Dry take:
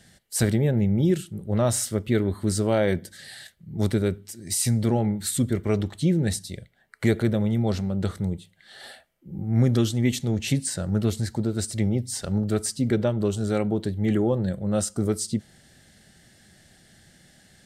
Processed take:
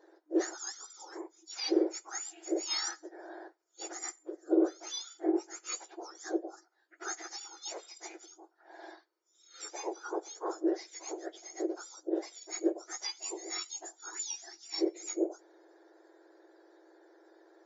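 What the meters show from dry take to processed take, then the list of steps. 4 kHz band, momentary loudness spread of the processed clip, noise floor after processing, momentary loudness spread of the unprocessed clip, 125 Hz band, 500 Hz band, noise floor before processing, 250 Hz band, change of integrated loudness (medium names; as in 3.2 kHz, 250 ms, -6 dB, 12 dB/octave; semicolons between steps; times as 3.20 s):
-4.5 dB, 16 LU, -71 dBFS, 10 LU, under -40 dB, -9.5 dB, -57 dBFS, -11.5 dB, -11.5 dB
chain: spectrum inverted on a logarithmic axis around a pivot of 1.7 kHz; FFT band-pass 310–7400 Hz; trim -6 dB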